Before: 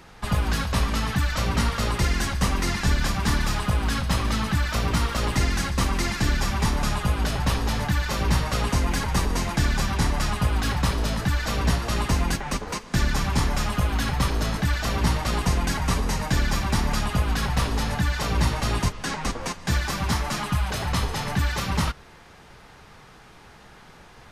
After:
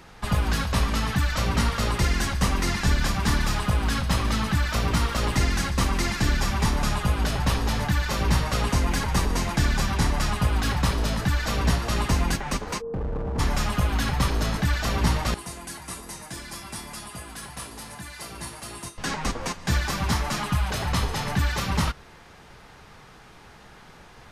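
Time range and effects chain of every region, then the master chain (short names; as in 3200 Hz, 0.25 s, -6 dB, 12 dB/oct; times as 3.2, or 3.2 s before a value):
12.8–13.38 Gaussian blur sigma 9.3 samples + whine 460 Hz -30 dBFS + hard clip -26 dBFS
15.34–18.98 HPF 160 Hz 6 dB/oct + bell 9800 Hz +14.5 dB 0.63 oct + resonator 340 Hz, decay 0.34 s, mix 80%
whole clip: dry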